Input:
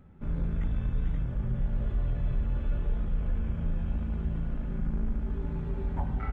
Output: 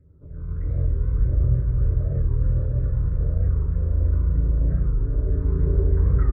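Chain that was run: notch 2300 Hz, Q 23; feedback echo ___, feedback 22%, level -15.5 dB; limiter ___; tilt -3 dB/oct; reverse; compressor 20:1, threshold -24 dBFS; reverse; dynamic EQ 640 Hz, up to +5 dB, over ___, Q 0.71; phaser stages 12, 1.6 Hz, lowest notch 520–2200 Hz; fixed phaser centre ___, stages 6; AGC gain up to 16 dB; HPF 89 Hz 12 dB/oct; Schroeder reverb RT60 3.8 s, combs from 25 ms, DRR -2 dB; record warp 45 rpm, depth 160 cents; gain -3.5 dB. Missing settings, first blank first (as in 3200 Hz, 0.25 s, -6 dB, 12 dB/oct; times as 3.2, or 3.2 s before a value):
0.275 s, -27 dBFS, -53 dBFS, 790 Hz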